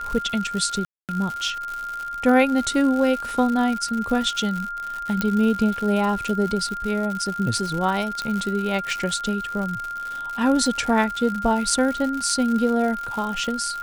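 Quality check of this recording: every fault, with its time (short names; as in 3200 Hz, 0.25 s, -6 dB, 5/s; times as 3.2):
crackle 140/s -27 dBFS
tone 1400 Hz -28 dBFS
0.85–1.09 gap 0.238 s
5.21 pop -8 dBFS
8.22 pop -15 dBFS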